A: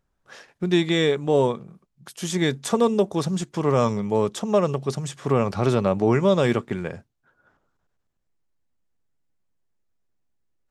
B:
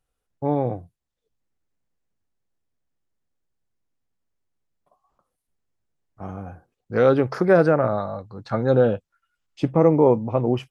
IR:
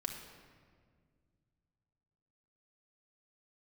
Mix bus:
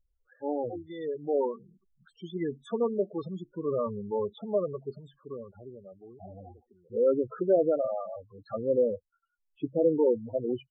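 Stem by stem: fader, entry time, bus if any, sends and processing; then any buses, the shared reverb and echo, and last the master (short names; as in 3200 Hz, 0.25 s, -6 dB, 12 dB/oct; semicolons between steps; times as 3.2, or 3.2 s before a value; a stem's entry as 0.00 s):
-6.0 dB, 0.00 s, no send, low shelf 91 Hz +9 dB; auto duck -23 dB, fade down 1.45 s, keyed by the second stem
-5.0 dB, 0.00 s, no send, spectral gate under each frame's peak -15 dB strong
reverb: off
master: LPF 2900 Hz 6 dB/oct; bell 140 Hz -11 dB 1.4 oct; loudest bins only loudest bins 8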